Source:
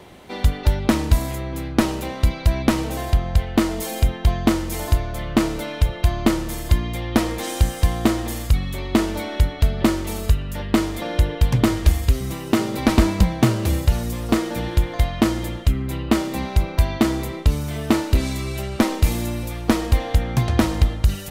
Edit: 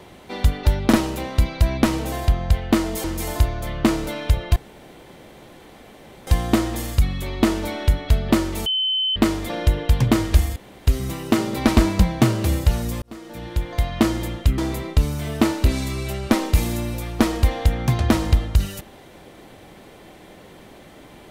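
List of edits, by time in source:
0.93–1.78 s: delete
3.89–4.56 s: delete
6.08–7.79 s: room tone
10.18–10.68 s: bleep 3.06 kHz -18.5 dBFS
12.08 s: insert room tone 0.31 s
14.23–15.24 s: fade in
15.79–17.07 s: delete

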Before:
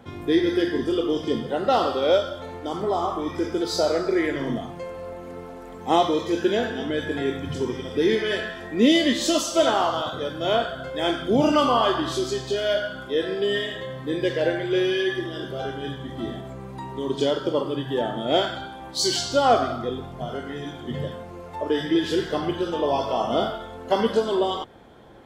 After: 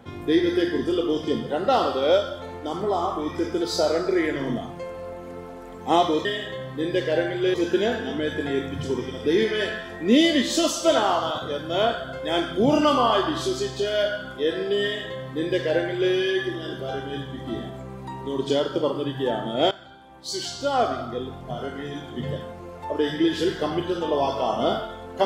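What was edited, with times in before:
13.54–14.83 s: copy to 6.25 s
18.42–20.33 s: fade in linear, from -16.5 dB

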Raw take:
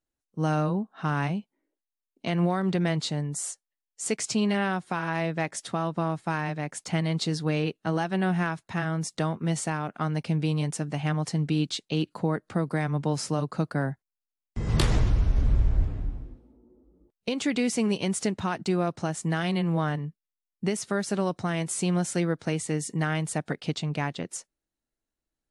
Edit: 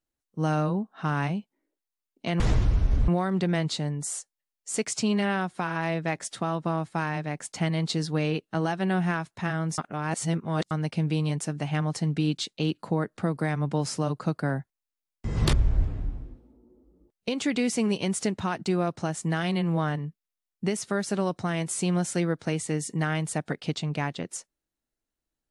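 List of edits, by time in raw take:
9.10–10.03 s: reverse
14.85–15.53 s: move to 2.40 s

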